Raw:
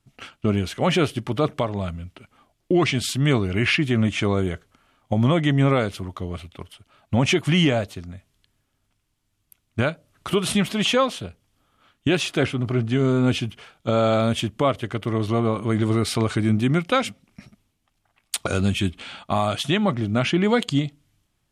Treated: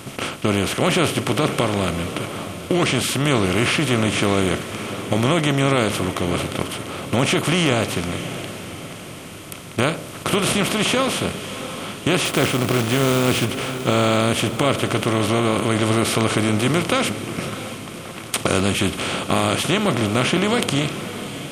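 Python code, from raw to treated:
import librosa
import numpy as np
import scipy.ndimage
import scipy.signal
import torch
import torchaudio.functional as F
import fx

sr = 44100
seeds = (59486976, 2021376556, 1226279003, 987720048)

p1 = fx.bin_compress(x, sr, power=0.4)
p2 = fx.high_shelf(p1, sr, hz=9600.0, db=10.5)
p3 = fx.quant_companded(p2, sr, bits=4, at=(12.25, 13.45))
p4 = p3 + fx.echo_diffused(p3, sr, ms=643, feedback_pct=47, wet_db=-12, dry=0)
y = F.gain(torch.from_numpy(p4), -4.5).numpy()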